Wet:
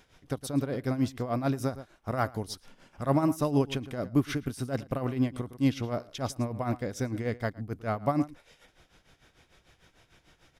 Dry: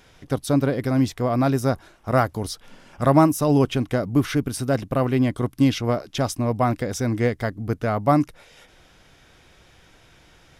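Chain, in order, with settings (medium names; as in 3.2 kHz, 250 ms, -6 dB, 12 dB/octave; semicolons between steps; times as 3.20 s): echo from a far wall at 19 m, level -17 dB; tremolo 6.7 Hz, depth 75%; trim -5 dB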